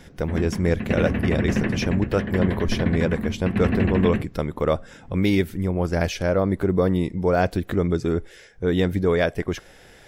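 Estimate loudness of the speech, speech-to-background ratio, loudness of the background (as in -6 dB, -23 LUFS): -24.0 LUFS, 2.0 dB, -26.0 LUFS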